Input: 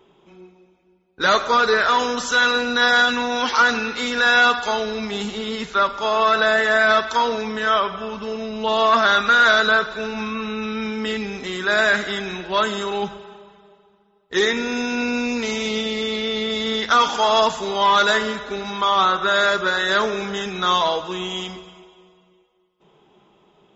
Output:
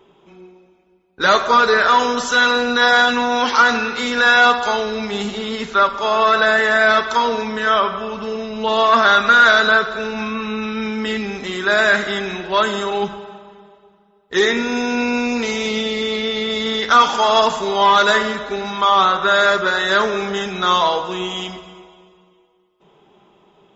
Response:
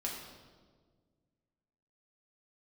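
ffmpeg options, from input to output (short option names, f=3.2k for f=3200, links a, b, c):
-filter_complex "[0:a]asplit=2[a][b];[b]lowpass=f=1.3k:p=1[c];[1:a]atrim=start_sample=2205,lowshelf=f=400:g=-11.5[d];[c][d]afir=irnorm=-1:irlink=0,volume=-4dB[e];[a][e]amix=inputs=2:normalize=0,volume=1dB"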